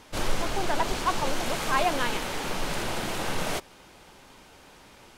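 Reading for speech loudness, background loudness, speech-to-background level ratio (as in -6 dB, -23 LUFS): -30.5 LUFS, -31.0 LUFS, 0.5 dB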